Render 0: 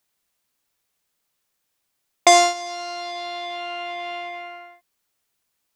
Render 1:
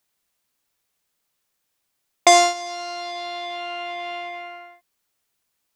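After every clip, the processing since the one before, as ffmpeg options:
-af anull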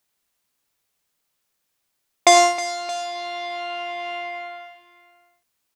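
-af "aecho=1:1:82|103|316|623:0.141|0.178|0.178|0.112"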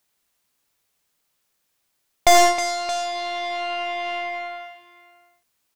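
-af "aeval=exprs='(tanh(5.62*val(0)+0.55)-tanh(0.55))/5.62':c=same,volume=1.78"

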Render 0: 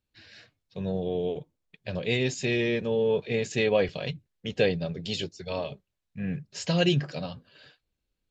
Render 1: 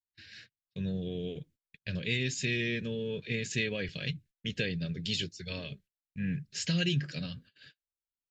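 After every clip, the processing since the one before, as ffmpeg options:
-af "agate=range=0.0447:threshold=0.00224:ratio=16:detection=peak,acompressor=threshold=0.0447:ratio=2,firequalizer=gain_entry='entry(160,0);entry(810,-20);entry(1600,1)':delay=0.05:min_phase=1"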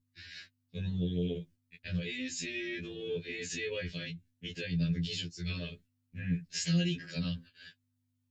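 -af "alimiter=level_in=1.58:limit=0.0631:level=0:latency=1:release=297,volume=0.631,aeval=exprs='val(0)+0.0002*(sin(2*PI*50*n/s)+sin(2*PI*2*50*n/s)/2+sin(2*PI*3*50*n/s)/3+sin(2*PI*4*50*n/s)/4+sin(2*PI*5*50*n/s)/5)':c=same,afftfilt=real='re*2*eq(mod(b,4),0)':imag='im*2*eq(mod(b,4),0)':win_size=2048:overlap=0.75,volume=1.78"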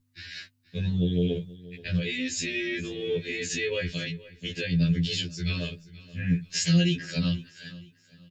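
-af "aecho=1:1:478|956|1434:0.106|0.0371|0.013,volume=2.37"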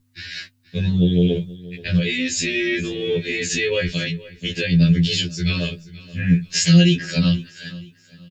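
-filter_complex "[0:a]asplit=2[s0][s1];[s1]adelay=17,volume=0.2[s2];[s0][s2]amix=inputs=2:normalize=0,volume=2.51"

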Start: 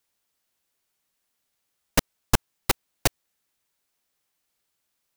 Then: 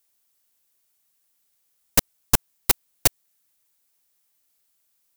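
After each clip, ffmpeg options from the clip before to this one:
-af "highshelf=f=6400:g=12,volume=0.841"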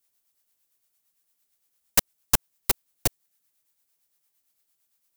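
-filter_complex "[0:a]acrossover=split=580[s0][s1];[s0]aeval=exprs='val(0)*(1-0.5/2+0.5/2*cos(2*PI*8.8*n/s))':c=same[s2];[s1]aeval=exprs='val(0)*(1-0.5/2-0.5/2*cos(2*PI*8.8*n/s))':c=same[s3];[s2][s3]amix=inputs=2:normalize=0,volume=0.891"

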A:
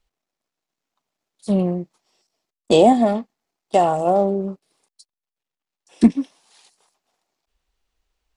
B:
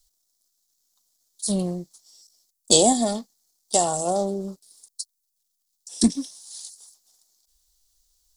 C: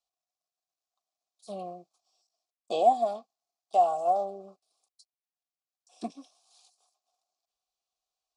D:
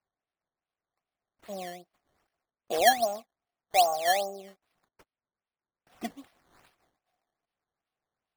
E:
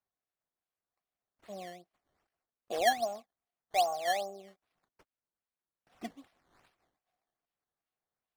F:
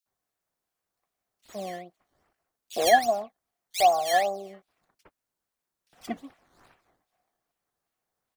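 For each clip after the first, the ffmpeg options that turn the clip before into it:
-af "aexciter=amount=14.2:drive=5.3:freq=3900,lowshelf=f=64:g=11.5,volume=0.447"
-filter_complex "[0:a]asplit=3[s0][s1][s2];[s0]bandpass=f=730:t=q:w=8,volume=1[s3];[s1]bandpass=f=1090:t=q:w=8,volume=0.501[s4];[s2]bandpass=f=2440:t=q:w=8,volume=0.355[s5];[s3][s4][s5]amix=inputs=3:normalize=0,acrossover=split=3500[s6][s7];[s7]acompressor=threshold=0.00158:ratio=4:attack=1:release=60[s8];[s6][s8]amix=inputs=2:normalize=0,volume=1.58"
-af "acrusher=samples=12:mix=1:aa=0.000001:lfo=1:lforange=12:lforate=2.5"
-af "highshelf=f=10000:g=-9,volume=0.531"
-filter_complex "[0:a]acrossover=split=3000[s0][s1];[s0]adelay=60[s2];[s2][s1]amix=inputs=2:normalize=0,volume=2.66"

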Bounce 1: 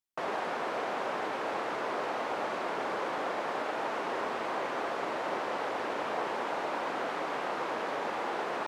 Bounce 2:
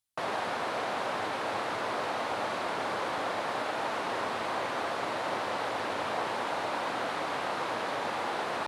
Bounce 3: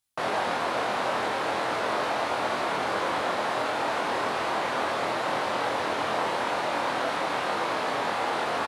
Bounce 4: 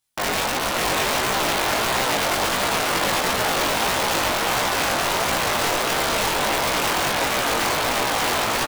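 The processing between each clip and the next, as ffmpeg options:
-af "equalizer=f=100:t=o:w=0.67:g=11,equalizer=f=400:t=o:w=0.67:g=-4,equalizer=f=4000:t=o:w=0.67:g=5,equalizer=f=10000:t=o:w=0.67:g=8,volume=1.19"
-filter_complex "[0:a]asplit=2[s0][s1];[s1]adelay=24,volume=0.75[s2];[s0][s2]amix=inputs=2:normalize=0,volume=1.41"
-af "aeval=exprs='(mod(11.9*val(0)+1,2)-1)/11.9':c=same,aecho=1:1:636:0.668,flanger=delay=15:depth=6.2:speed=1.5,volume=2.51"

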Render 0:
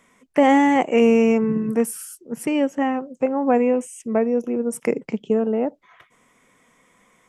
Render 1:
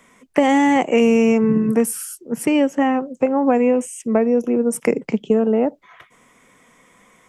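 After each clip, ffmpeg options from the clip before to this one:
-filter_complex "[0:a]acrossover=split=170|3000[s0][s1][s2];[s1]acompressor=threshold=0.126:ratio=6[s3];[s0][s3][s2]amix=inputs=3:normalize=0,volume=1.88"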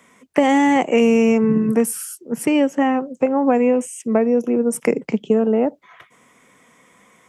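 -af "highpass=75"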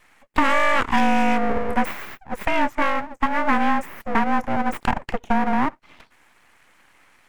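-af "afreqshift=26,aeval=exprs='abs(val(0))':c=same,equalizer=f=250:t=o:w=1:g=5,equalizer=f=1000:t=o:w=1:g=5,equalizer=f=2000:t=o:w=1:g=10,equalizer=f=4000:t=o:w=1:g=-3,volume=0.562"

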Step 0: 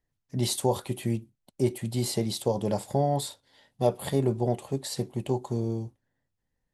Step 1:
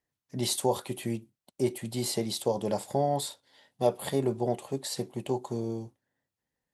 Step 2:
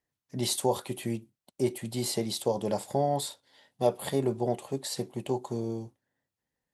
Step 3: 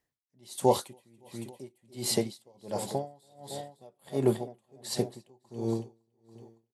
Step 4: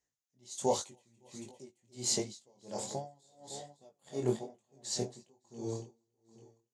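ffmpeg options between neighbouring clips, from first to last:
-af "highpass=f=240:p=1"
-af anull
-af "aecho=1:1:280|560|840|1120|1400:0.266|0.128|0.0613|0.0294|0.0141,aeval=exprs='val(0)*pow(10,-35*(0.5-0.5*cos(2*PI*1.4*n/s))/20)':c=same,volume=1.68"
-af "flanger=delay=19.5:depth=5.2:speed=1.3,lowpass=f=6700:t=q:w=5.5,volume=0.631"

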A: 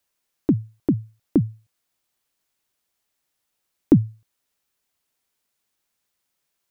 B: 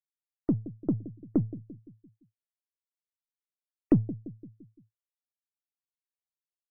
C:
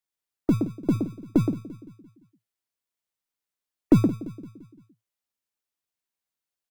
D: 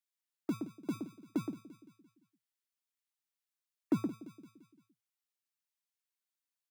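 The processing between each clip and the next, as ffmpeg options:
-filter_complex "[0:a]aeval=exprs='if(lt(val(0),0),0.708*val(0),val(0))':c=same,asplit=2[s0][s1];[s1]adelay=171,lowpass=f=1000:p=1,volume=0.178,asplit=2[s2][s3];[s3]adelay=171,lowpass=f=1000:p=1,volume=0.54,asplit=2[s4][s5];[s5]adelay=171,lowpass=f=1000:p=1,volume=0.54,asplit=2[s6][s7];[s7]adelay=171,lowpass=f=1000:p=1,volume=0.54,asplit=2[s8][s9];[s9]adelay=171,lowpass=f=1000:p=1,volume=0.54[s10];[s0][s2][s4][s6][s8][s10]amix=inputs=6:normalize=0,afftdn=nr=33:nf=-43,volume=0.501"
-filter_complex "[0:a]acrossover=split=150[s0][s1];[s0]acrusher=samples=36:mix=1:aa=0.000001[s2];[s1]aecho=1:1:121:0.562[s3];[s2][s3]amix=inputs=2:normalize=0,volume=1.78"
-filter_complex "[0:a]highpass=330,equalizer=f=530:w=1.1:g=-13,acrossover=split=1400[s0][s1];[s1]alimiter=level_in=3.35:limit=0.0631:level=0:latency=1:release=465,volume=0.299[s2];[s0][s2]amix=inputs=2:normalize=0,volume=0.631"

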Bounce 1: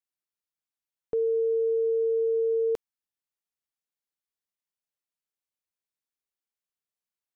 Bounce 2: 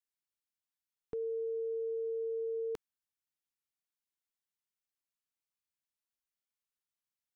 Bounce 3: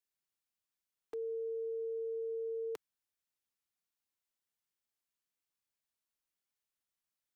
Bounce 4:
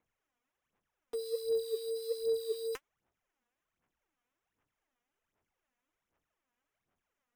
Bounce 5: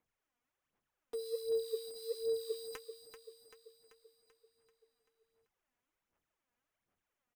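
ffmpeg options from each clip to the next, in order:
-af "equalizer=f=550:t=o:w=0.72:g=-13.5,volume=0.708"
-filter_complex "[0:a]acrossover=split=160|550[s0][s1][s2];[s0]aeval=exprs='(mod(251*val(0)+1,2)-1)/251':c=same[s3];[s1]alimiter=level_in=7.94:limit=0.0631:level=0:latency=1,volume=0.126[s4];[s3][s4][s2]amix=inputs=3:normalize=0,volume=1.12"
-af "acrusher=samples=10:mix=1:aa=0.000001,aphaser=in_gain=1:out_gain=1:delay=4.2:decay=0.7:speed=1.3:type=sinusoidal"
-af "aecho=1:1:387|774|1161|1548|1935|2322|2709:0.335|0.188|0.105|0.0588|0.0329|0.0184|0.0103,volume=0.708"

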